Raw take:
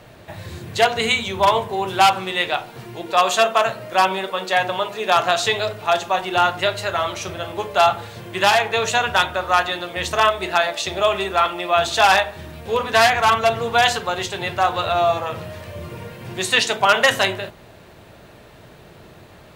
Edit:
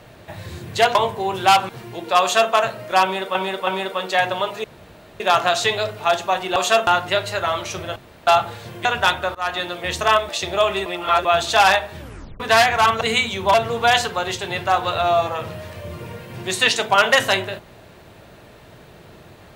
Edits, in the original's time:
0:00.95–0:01.48: move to 0:13.45
0:02.22–0:02.71: remove
0:03.23–0:03.54: duplicate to 0:06.38
0:04.05–0:04.37: repeat, 3 plays
0:05.02: splice in room tone 0.56 s
0:07.47–0:07.78: fill with room tone
0:08.36–0:08.97: remove
0:09.47–0:09.72: fade in, from −23.5 dB
0:10.41–0:10.73: remove
0:11.30–0:11.69: reverse
0:12.43: tape stop 0.41 s

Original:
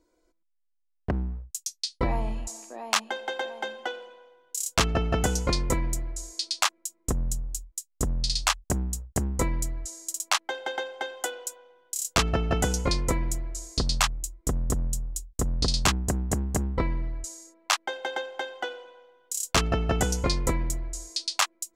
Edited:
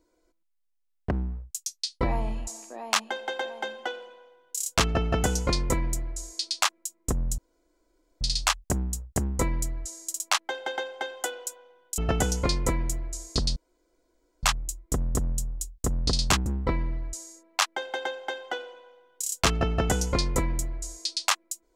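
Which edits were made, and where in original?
0:07.38–0:08.21: fill with room tone
0:11.98–0:12.40: remove
0:13.98: splice in room tone 0.87 s
0:16.01–0:16.57: remove

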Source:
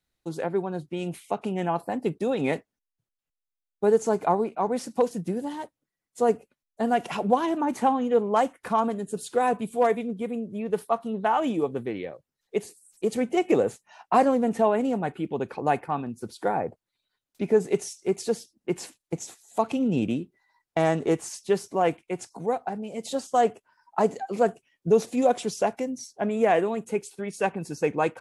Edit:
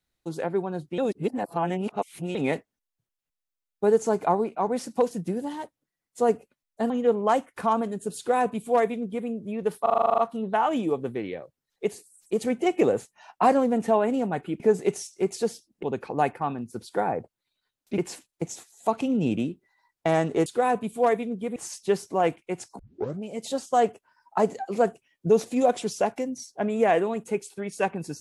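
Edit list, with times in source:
0:00.98–0:02.35: reverse
0:06.90–0:07.97: remove
0:09.24–0:10.34: duplicate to 0:21.17
0:10.89: stutter 0.04 s, 10 plays
0:17.46–0:18.69: move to 0:15.31
0:22.40: tape start 0.43 s

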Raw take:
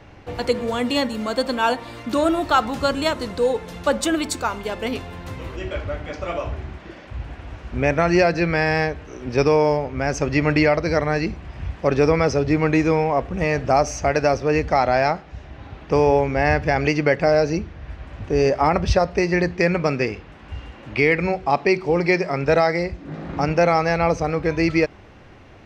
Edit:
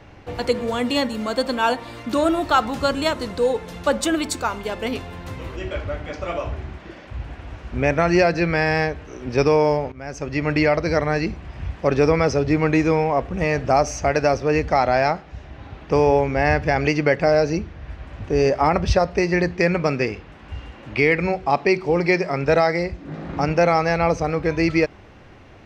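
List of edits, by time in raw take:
0:09.92–0:10.77: fade in, from −15.5 dB

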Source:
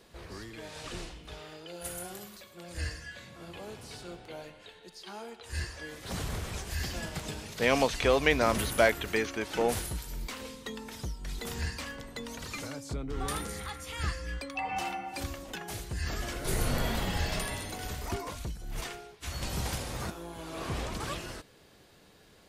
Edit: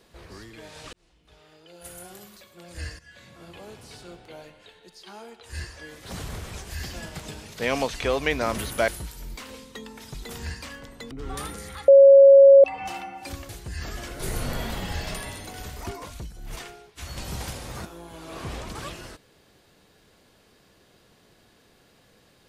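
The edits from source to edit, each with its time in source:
0:00.93–0:02.37: fade in
0:02.99–0:03.29: fade in, from −13 dB
0:08.88–0:09.79: remove
0:11.05–0:11.30: remove
0:12.27–0:13.02: remove
0:13.79–0:14.55: beep over 551 Hz −7.5 dBFS
0:15.40–0:15.74: remove

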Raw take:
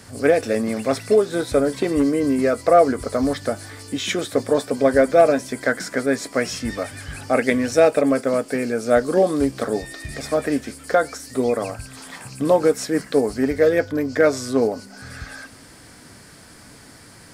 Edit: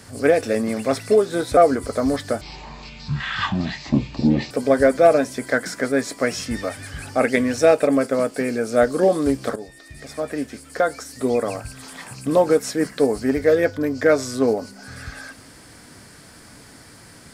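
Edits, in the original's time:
0:01.57–0:02.74: remove
0:03.58–0:04.65: play speed 51%
0:09.70–0:11.49: fade in, from −13 dB

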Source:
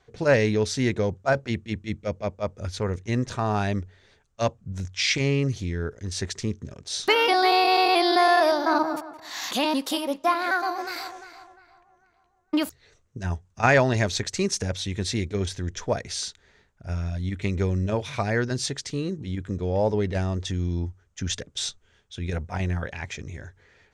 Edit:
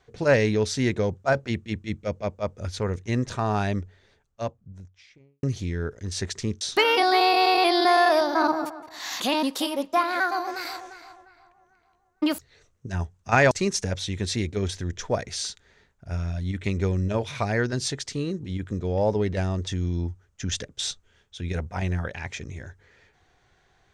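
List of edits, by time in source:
0:03.57–0:05.43: fade out and dull
0:06.61–0:06.92: remove
0:13.82–0:14.29: remove

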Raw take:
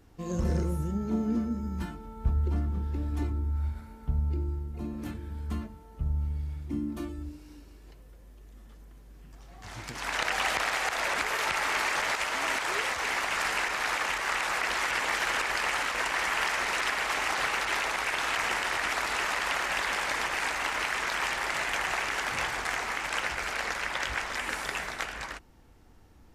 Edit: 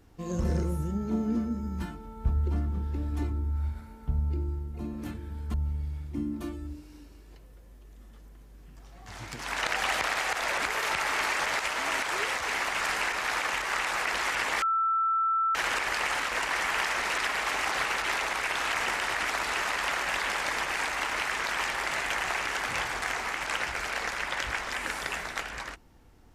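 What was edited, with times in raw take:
0:05.54–0:06.10: remove
0:15.18: insert tone 1,330 Hz −23 dBFS 0.93 s

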